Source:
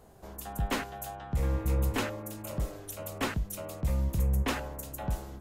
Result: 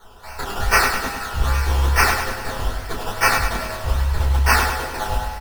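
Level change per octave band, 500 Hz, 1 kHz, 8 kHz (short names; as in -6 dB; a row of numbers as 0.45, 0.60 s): +9.5, +18.0, +14.5 dB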